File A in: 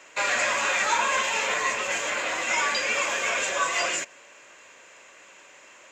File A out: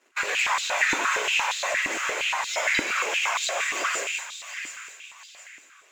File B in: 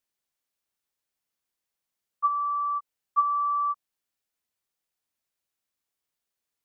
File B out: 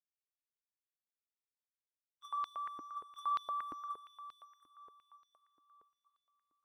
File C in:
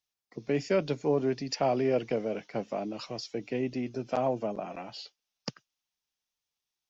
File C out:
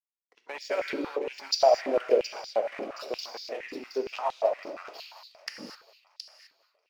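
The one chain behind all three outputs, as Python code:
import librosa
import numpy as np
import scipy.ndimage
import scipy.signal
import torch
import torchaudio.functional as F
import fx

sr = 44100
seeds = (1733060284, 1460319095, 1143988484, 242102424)

p1 = fx.hpss(x, sr, part='harmonic', gain_db=-18)
p2 = fx.leveller(p1, sr, passes=1)
p3 = 10.0 ** (-17.5 / 20.0) * np.tanh(p2 / 10.0 ** (-17.5 / 20.0))
p4 = fx.power_curve(p3, sr, exponent=1.4)
p5 = p4 + fx.echo_wet_highpass(p4, sr, ms=720, feedback_pct=36, hz=1600.0, wet_db=-8, dry=0)
p6 = fx.rev_gated(p5, sr, seeds[0], gate_ms=280, shape='flat', drr_db=2.5)
y = fx.filter_held_highpass(p6, sr, hz=8.6, low_hz=300.0, high_hz=3900.0)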